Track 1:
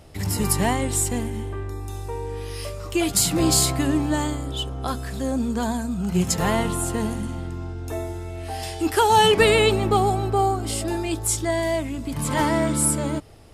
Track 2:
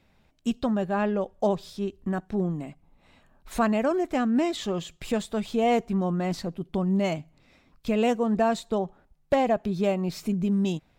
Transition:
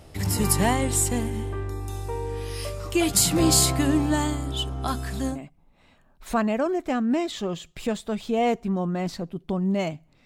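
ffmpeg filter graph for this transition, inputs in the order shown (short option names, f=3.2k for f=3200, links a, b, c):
-filter_complex "[0:a]asettb=1/sr,asplit=3[a][b][c];[a]atrim=end=4.114[d];[b]atrim=start=4.11:end=5.39,asetpts=PTS-STARTPTS,afade=t=in:d=0.004:c=qsin,afade=t=out:st=1.276:d=0.004:c=qsin,bandreject=f=500:w=5.1[e];[c]atrim=start=5.386[f];[d][e]acrossfade=d=0.004:c1=hsin:c2=qsin[g];[g][f]acrossfade=d=0.004:c1=qsin:c2=hsin,apad=whole_dur=10.25,atrim=end=10.25,atrim=end=5.39,asetpts=PTS-STARTPTS[h];[1:a]atrim=start=2.52:end=7.5,asetpts=PTS-STARTPTS[i];[h][i]acrossfade=d=0.12:c1=tri:c2=tri"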